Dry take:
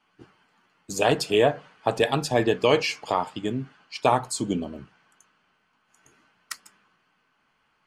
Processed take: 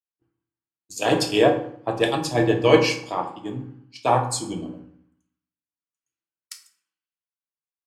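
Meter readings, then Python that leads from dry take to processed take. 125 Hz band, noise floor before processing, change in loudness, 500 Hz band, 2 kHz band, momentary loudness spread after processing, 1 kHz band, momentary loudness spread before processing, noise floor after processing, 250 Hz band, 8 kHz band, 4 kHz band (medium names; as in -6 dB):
+3.5 dB, -70 dBFS, +3.0 dB, +2.0 dB, +1.5 dB, 17 LU, +1.5 dB, 18 LU, under -85 dBFS, +4.0 dB, +2.0 dB, +1.5 dB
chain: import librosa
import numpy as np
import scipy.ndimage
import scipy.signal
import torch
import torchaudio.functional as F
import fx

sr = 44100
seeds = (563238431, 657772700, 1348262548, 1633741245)

y = fx.rev_fdn(x, sr, rt60_s=0.99, lf_ratio=1.55, hf_ratio=0.55, size_ms=18.0, drr_db=2.0)
y = fx.band_widen(y, sr, depth_pct=100)
y = F.gain(torch.from_numpy(y), -3.0).numpy()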